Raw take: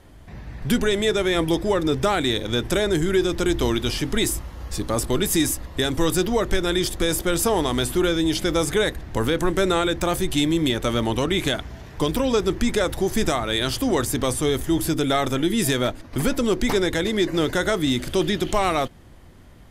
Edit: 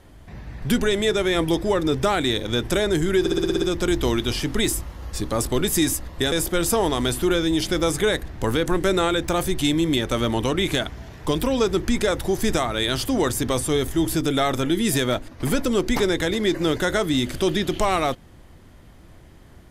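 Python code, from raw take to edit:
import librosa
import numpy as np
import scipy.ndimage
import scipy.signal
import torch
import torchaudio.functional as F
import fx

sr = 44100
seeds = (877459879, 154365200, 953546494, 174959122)

y = fx.edit(x, sr, fx.stutter(start_s=3.2, slice_s=0.06, count=8),
    fx.cut(start_s=5.9, length_s=1.15), tone=tone)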